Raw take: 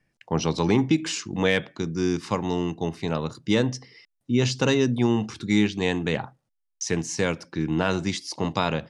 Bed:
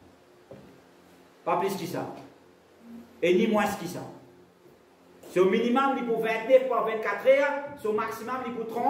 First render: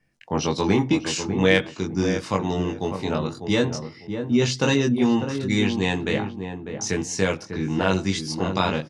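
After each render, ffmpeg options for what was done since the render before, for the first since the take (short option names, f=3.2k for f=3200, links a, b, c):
-filter_complex "[0:a]asplit=2[a][b];[b]adelay=21,volume=-2.5dB[c];[a][c]amix=inputs=2:normalize=0,asplit=2[d][e];[e]adelay=598,lowpass=f=1k:p=1,volume=-7dB,asplit=2[f][g];[g]adelay=598,lowpass=f=1k:p=1,volume=0.26,asplit=2[h][i];[i]adelay=598,lowpass=f=1k:p=1,volume=0.26[j];[d][f][h][j]amix=inputs=4:normalize=0"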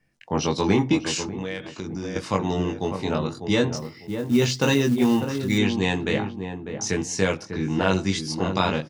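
-filter_complex "[0:a]asettb=1/sr,asplit=3[a][b][c];[a]atrim=end=1.234[d];[b]atrim=start=1.23:end=2.16,asetpts=PTS-STARTPTS,afade=t=in:d=0.004:c=qsin,afade=t=out:st=0.926:d=0.004:c=qsin,acompressor=threshold=-27dB:ratio=6:attack=3.2:release=140:knee=1:detection=peak[e];[c]atrim=start=2.156[f];[d][e]acrossfade=d=0.004:c1=hsin:c2=qsin[g];[g][f]acrossfade=d=0.004:c1=qsin:c2=hsin,asettb=1/sr,asplit=3[h][i][j];[h]atrim=end=3.764[k];[i]atrim=start=3.76:end=5.58,asetpts=PTS-STARTPTS,afade=t=in:d=0.004:c=qsin,afade=t=out:st=1.816:d=0.004:c=qsin,acrusher=bits=6:mode=log:mix=0:aa=0.000001[l];[j]atrim=start=5.576[m];[k][l]acrossfade=d=0.004:c1=hsin:c2=qsin[n];[n][m]acrossfade=d=0.004:c1=qsin:c2=hsin"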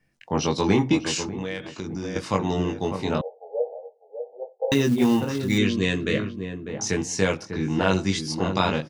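-filter_complex "[0:a]asettb=1/sr,asplit=3[a][b][c];[a]atrim=end=3.214[d];[b]atrim=start=3.21:end=4.72,asetpts=PTS-STARTPTS,afade=t=in:d=0.004:c=qsin,afade=t=out:st=1.506:d=0.004:c=qsin,asuperpass=centerf=610:order=12:qfactor=1.7[e];[c]atrim=start=4.716[f];[d][e]acrossfade=d=0.004:c1=hsin:c2=qsin[g];[g][f]acrossfade=d=0.004:c1=qsin:c2=hsin,asettb=1/sr,asplit=3[h][i][j];[h]atrim=end=5.584[k];[i]atrim=start=5.58:end=6.69,asetpts=PTS-STARTPTS,afade=t=in:d=0.004:c=qsin,afade=t=out:st=1.106:d=0.004:c=qsin,asuperstop=centerf=830:order=4:qfactor=1.9[l];[j]atrim=start=6.686[m];[k][l]acrossfade=d=0.004:c1=hsin:c2=qsin[n];[n][m]acrossfade=d=0.004:c1=qsin:c2=hsin"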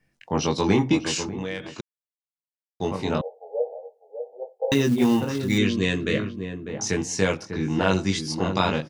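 -filter_complex "[0:a]asplit=3[a][b][c];[a]atrim=end=1.81,asetpts=PTS-STARTPTS,afade=t=out:st=1.806:d=0.004:c=hsin[d];[b]atrim=start=1.81:end=2.8,asetpts=PTS-STARTPTS,volume=0[e];[c]atrim=start=2.8,asetpts=PTS-STARTPTS,afade=t=in:d=0.004:c=hsin[f];[d][e][f]concat=n=3:v=0:a=1"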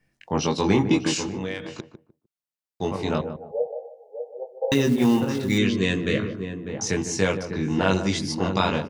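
-filter_complex "[0:a]asplit=2[a][b];[b]adelay=151,lowpass=f=820:p=1,volume=-8.5dB,asplit=2[c][d];[d]adelay=151,lowpass=f=820:p=1,volume=0.24,asplit=2[e][f];[f]adelay=151,lowpass=f=820:p=1,volume=0.24[g];[a][c][e][g]amix=inputs=4:normalize=0"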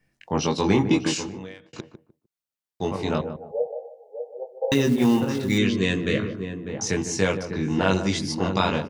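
-filter_complex "[0:a]asplit=2[a][b];[a]atrim=end=1.73,asetpts=PTS-STARTPTS,afade=t=out:st=1.06:d=0.67[c];[b]atrim=start=1.73,asetpts=PTS-STARTPTS,afade=t=in:d=0.004:c=hsin[d];[c][d]concat=n=2:v=0:a=1"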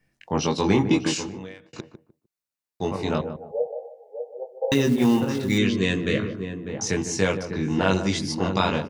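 -filter_complex "[0:a]asettb=1/sr,asplit=3[a][b][c];[a]atrim=end=1.494[d];[b]atrim=start=1.49:end=3.04,asetpts=PTS-STARTPTS,afade=t=in:d=0.004:c=qsin,afade=t=out:st=1.546:d=0.004:c=qsin,bandreject=f=3.2k:w=12[e];[c]atrim=start=3.036[f];[d][e]acrossfade=d=0.004:c1=hsin:c2=qsin[g];[g][f]acrossfade=d=0.004:c1=qsin:c2=hsin,asettb=1/sr,asplit=3[h][i][j];[h]atrim=end=3.784[k];[i]atrim=start=3.78:end=4.23,asetpts=PTS-STARTPTS,afade=t=in:d=0.004:c=qsin,afade=t=out:st=0.446:d=0.004:c=qsin,equalizer=f=1.7k:w=1.5:g=7.5[l];[j]atrim=start=4.226[m];[k][l]acrossfade=d=0.004:c1=hsin:c2=qsin[n];[n][m]acrossfade=d=0.004:c1=qsin:c2=hsin"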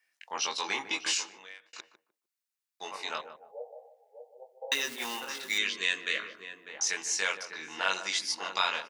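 -af "highpass=1.3k"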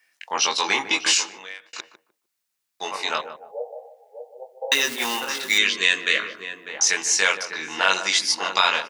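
-af "volume=10.5dB,alimiter=limit=-3dB:level=0:latency=1"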